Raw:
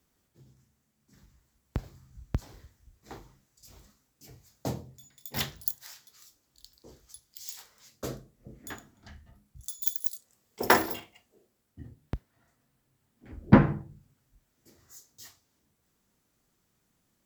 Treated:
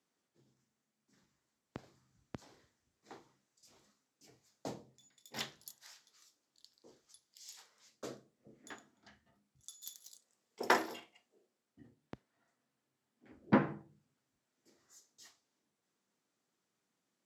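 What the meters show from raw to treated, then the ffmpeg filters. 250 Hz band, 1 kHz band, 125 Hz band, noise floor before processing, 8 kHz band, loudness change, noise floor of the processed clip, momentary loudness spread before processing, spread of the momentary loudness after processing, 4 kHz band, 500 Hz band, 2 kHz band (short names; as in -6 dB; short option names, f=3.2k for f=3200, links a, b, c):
-10.5 dB, -7.5 dB, -16.5 dB, -75 dBFS, -10.0 dB, -9.0 dB, under -85 dBFS, 25 LU, 25 LU, -8.0 dB, -8.0 dB, -7.5 dB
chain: -af "highpass=230,lowpass=8k,volume=-7.5dB"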